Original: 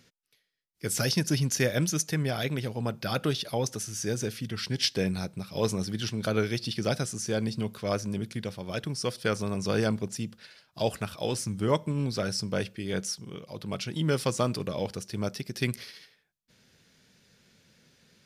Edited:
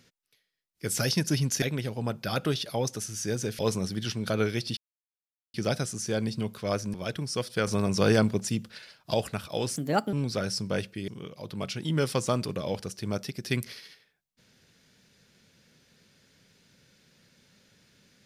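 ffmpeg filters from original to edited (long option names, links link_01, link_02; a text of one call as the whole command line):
ffmpeg -i in.wav -filter_complex "[0:a]asplit=10[link_01][link_02][link_03][link_04][link_05][link_06][link_07][link_08][link_09][link_10];[link_01]atrim=end=1.622[link_11];[link_02]atrim=start=2.408:end=4.382[link_12];[link_03]atrim=start=5.558:end=6.74,asetpts=PTS-STARTPTS,afade=type=out:start_time=1.178:duration=0.004:curve=hsin,apad=pad_dur=0.77[link_13];[link_04]atrim=start=6.74:end=8.142,asetpts=PTS-STARTPTS,afade=type=in:duration=0.004:curve=hsin[link_14];[link_05]atrim=start=8.618:end=9.352[link_15];[link_06]atrim=start=9.348:end=10.822,asetpts=PTS-STARTPTS,volume=4.5dB[link_16];[link_07]atrim=start=10.818:end=11.444[link_17];[link_08]atrim=start=11.44:end=11.95,asetpts=PTS-STARTPTS,asetrate=60858,aresample=44100[link_18];[link_09]atrim=start=11.946:end=12.902[link_19];[link_10]atrim=start=13.188[link_20];[link_11][link_12]acrossfade=duration=0.004:curve1=hsin:curve2=hsin[link_21];[link_13][link_14]concat=n=2:v=0:a=1[link_22];[link_21][link_22]acrossfade=duration=0.004:curve1=hsin:curve2=hsin[link_23];[link_23][link_15]acrossfade=duration=0.004:curve1=hsin:curve2=hsin[link_24];[link_24][link_16]acrossfade=duration=0.004:curve1=hsin:curve2=hsin[link_25];[link_25][link_17]acrossfade=duration=0.004:curve1=hsin:curve2=hsin[link_26];[link_26][link_18]acrossfade=duration=0.004:curve1=hsin:curve2=hsin[link_27];[link_27][link_19]acrossfade=duration=0.004:curve1=hsin:curve2=hsin[link_28];[link_28][link_20]acrossfade=duration=0.004:curve1=hsin:curve2=hsin" out.wav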